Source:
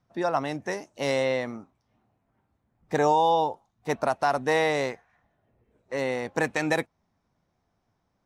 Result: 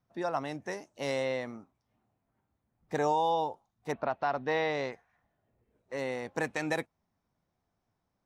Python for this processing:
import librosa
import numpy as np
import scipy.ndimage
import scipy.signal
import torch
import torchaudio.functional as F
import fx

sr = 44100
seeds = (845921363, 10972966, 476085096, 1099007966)

y = fx.lowpass(x, sr, hz=fx.line((3.91, 3500.0), (4.91, 5600.0)), slope=24, at=(3.91, 4.91), fade=0.02)
y = y * librosa.db_to_amplitude(-6.5)